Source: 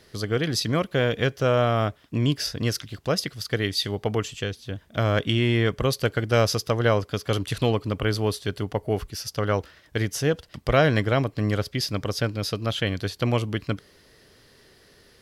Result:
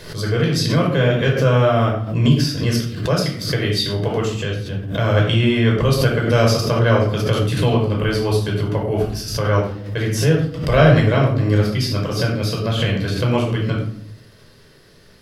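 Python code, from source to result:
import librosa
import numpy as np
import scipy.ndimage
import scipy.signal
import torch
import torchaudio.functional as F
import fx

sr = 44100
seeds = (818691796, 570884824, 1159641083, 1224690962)

y = fx.room_shoebox(x, sr, seeds[0], volume_m3=920.0, walls='furnished', distance_m=5.2)
y = fx.pre_swell(y, sr, db_per_s=81.0)
y = y * 10.0 ** (-2.0 / 20.0)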